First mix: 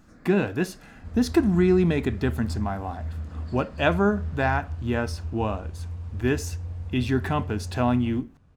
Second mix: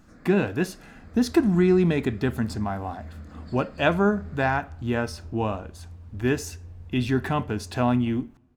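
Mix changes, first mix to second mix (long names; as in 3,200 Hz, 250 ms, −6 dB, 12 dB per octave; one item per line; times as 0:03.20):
second sound −9.5 dB
reverb: on, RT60 1.2 s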